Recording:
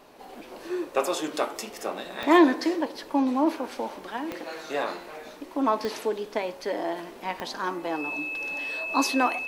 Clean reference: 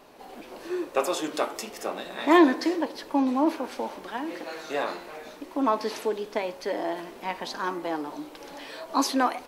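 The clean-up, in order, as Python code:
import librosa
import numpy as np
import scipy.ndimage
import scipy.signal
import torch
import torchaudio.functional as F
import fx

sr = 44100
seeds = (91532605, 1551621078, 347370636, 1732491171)

y = fx.fix_declick_ar(x, sr, threshold=10.0)
y = fx.notch(y, sr, hz=2600.0, q=30.0)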